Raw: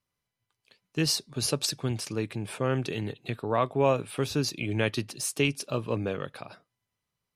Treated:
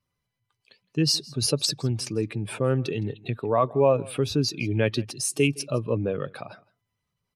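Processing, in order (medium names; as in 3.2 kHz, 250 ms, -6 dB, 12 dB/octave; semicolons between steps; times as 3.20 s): spectral contrast enhancement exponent 1.5; delay 163 ms -23 dB; trim +4 dB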